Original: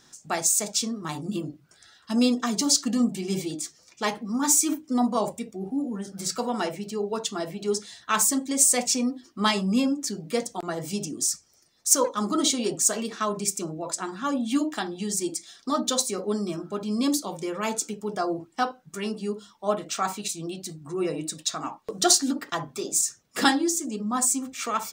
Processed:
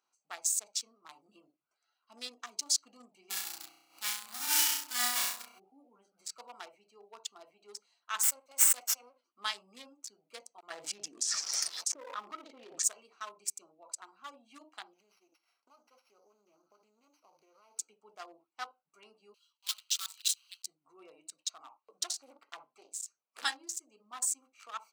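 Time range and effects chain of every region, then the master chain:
3.29–5.58 s: formants flattened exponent 0.1 + flutter echo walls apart 5.6 m, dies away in 1 s + swell ahead of each attack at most 110 dB/s
8.23–9.24 s: comb filter that takes the minimum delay 1.4 ms + high-pass 220 Hz 24 dB/octave + treble shelf 8.2 kHz +9 dB
10.70–12.84 s: low-pass that closes with the level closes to 480 Hz, closed at -17 dBFS + level flattener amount 100%
14.93–17.79 s: sorted samples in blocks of 8 samples + compression 16:1, threshold -35 dBFS + loudspeaker Doppler distortion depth 0.28 ms
19.34–20.66 s: block-companded coder 3-bit + inverse Chebyshev high-pass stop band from 400 Hz, stop band 60 dB + resonant high shelf 2.6 kHz +7 dB, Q 3
22.04–23.40 s: compression 3:1, threshold -23 dBFS + loudspeaker Doppler distortion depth 0.56 ms
whole clip: local Wiener filter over 25 samples; high-pass 1.4 kHz 12 dB/octave; trim -7 dB

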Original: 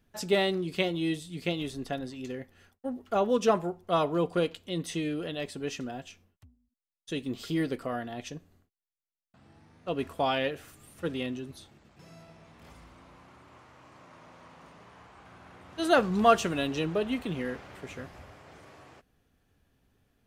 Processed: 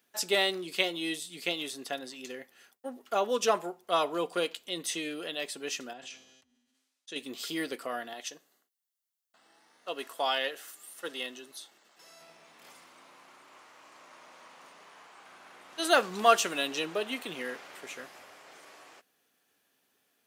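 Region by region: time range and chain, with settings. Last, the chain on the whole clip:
5.93–7.16 s: low-pass 7 kHz + feedback comb 130 Hz, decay 0.99 s, mix 50% + decay stretcher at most 41 dB/s
8.13–12.21 s: high-pass 430 Hz 6 dB/octave + band-stop 2.4 kHz, Q 8.3
whole clip: high-pass 280 Hz 12 dB/octave; tilt EQ +2.5 dB/octave

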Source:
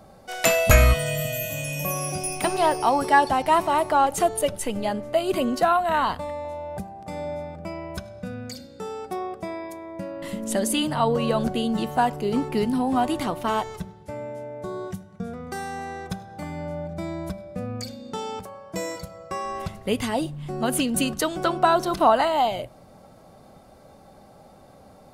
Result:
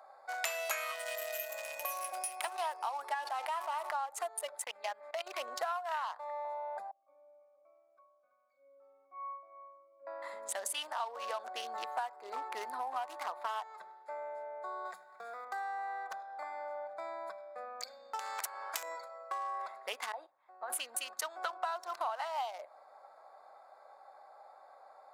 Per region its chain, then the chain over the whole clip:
3.14–3.95 s: feedback comb 100 Hz, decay 0.16 s, mix 70% + level flattener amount 70%
4.64–5.40 s: gate with hold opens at -25 dBFS, closes at -31 dBFS + peaking EQ 2.6 kHz +8 dB 1.3 oct + level held to a coarse grid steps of 13 dB
6.91–10.07 s: pitch-class resonator C#, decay 0.49 s + delay 329 ms -11 dB
14.85–15.45 s: treble shelf 2.3 kHz +7.5 dB + companded quantiser 6-bit + three bands compressed up and down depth 40%
18.19–18.83 s: peaking EQ 260 Hz +14.5 dB 1.4 oct + spectrum-flattening compressor 4:1
20.12–20.70 s: gate -28 dBFS, range -15 dB + compression 2.5:1, threshold -33 dBFS + tone controls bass -7 dB, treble -11 dB
whole clip: local Wiener filter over 15 samples; high-pass 760 Hz 24 dB/octave; compression 5:1, threshold -37 dBFS; trim +1.5 dB

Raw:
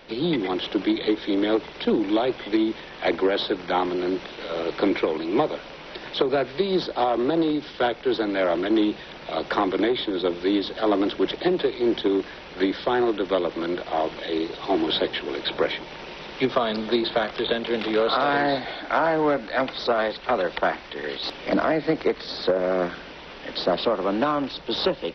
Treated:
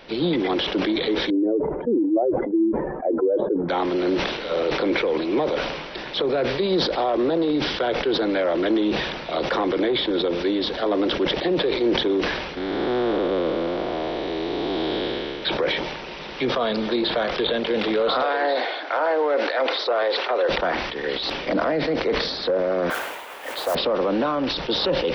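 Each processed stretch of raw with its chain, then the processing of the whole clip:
1.30–3.69 s: spectral contrast enhancement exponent 2.1 + Bessel low-pass 830 Hz, order 6
12.57–15.43 s: spectral blur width 496 ms + bass shelf 120 Hz +7 dB
18.22–20.49 s: high-pass 360 Hz 24 dB/octave + distance through air 54 m
22.90–23.75 s: band-pass 530–3000 Hz + modulation noise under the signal 10 dB + peaking EQ 900 Hz +4 dB 1.5 oct
whole clip: dynamic bell 510 Hz, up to +6 dB, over -36 dBFS, Q 4.1; peak limiter -16.5 dBFS; decay stretcher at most 41 dB/s; trim +2.5 dB

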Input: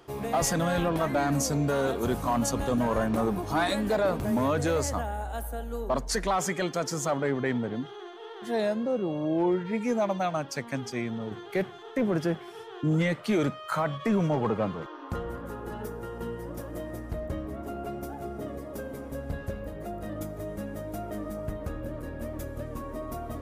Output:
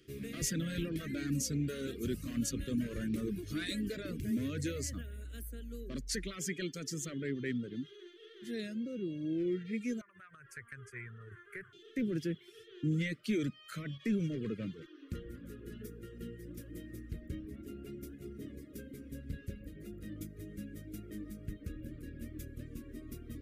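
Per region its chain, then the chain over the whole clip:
10.01–11.73 s: FFT filter 110 Hz 0 dB, 280 Hz -26 dB, 400 Hz -5 dB, 580 Hz -9 dB, 890 Hz +13 dB, 1.6 kHz +11 dB, 3.7 kHz -22 dB, 5.4 kHz -18 dB, 10 kHz +2 dB, 15 kHz -17 dB + compression 16:1, threshold -29 dBFS
whole clip: reverb removal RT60 0.53 s; Chebyshev band-stop 340–2100 Hz, order 2; trim -5.5 dB

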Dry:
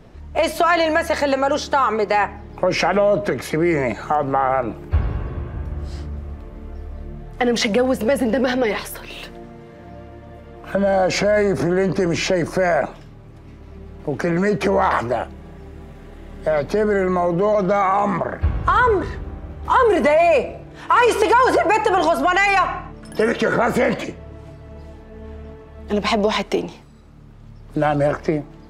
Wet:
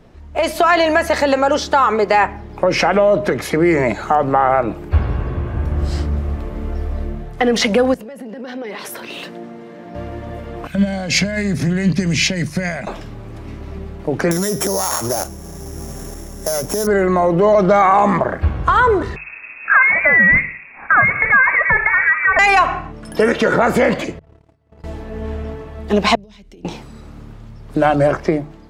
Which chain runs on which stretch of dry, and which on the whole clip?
7.94–9.95 s: treble shelf 9.1 kHz -4.5 dB + compression 10:1, threshold -29 dBFS + ladder high-pass 150 Hz, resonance 25%
10.67–12.87 s: high-pass 50 Hz + high-order bell 670 Hz -15.5 dB 2.6 oct + upward expansion, over -35 dBFS
14.31–16.87 s: sorted samples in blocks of 8 samples + resonant high shelf 5.6 kHz +8 dB, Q 3 + compression 5:1, threshold -19 dBFS
19.16–22.39 s: bass shelf 400 Hz -9 dB + frequency inversion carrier 2.6 kHz
24.19–24.84 s: high-pass 52 Hz 24 dB/octave + gate -35 dBFS, range -33 dB
26.15–26.65 s: compression 5:1, threshold -23 dBFS + amplifier tone stack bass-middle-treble 10-0-1
whole clip: hum notches 50/100/150 Hz; level rider; trim -1 dB

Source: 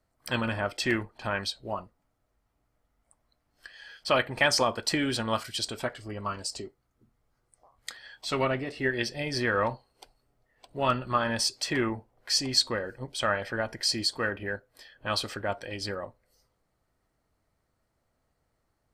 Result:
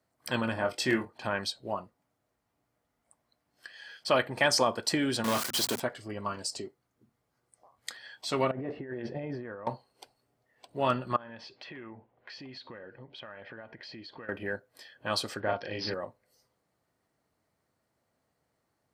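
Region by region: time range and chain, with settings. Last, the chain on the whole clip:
0.54–1.13 s: doubling 23 ms -6 dB + tape noise reduction on one side only decoder only
5.24–5.80 s: companded quantiser 2-bit + high-pass 130 Hz + hum notches 60/120/180/240 Hz
8.51–9.67 s: low-pass 1.1 kHz + compressor with a negative ratio -38 dBFS
11.16–14.29 s: low-pass 3.2 kHz 24 dB/octave + compression, threshold -43 dBFS
15.40–15.94 s: doubling 37 ms -2 dB + careless resampling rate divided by 4×, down none, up filtered
whole clip: high-pass 120 Hz 12 dB/octave; band-stop 1.3 kHz, Q 20; dynamic bell 2.5 kHz, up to -4 dB, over -42 dBFS, Q 1.1

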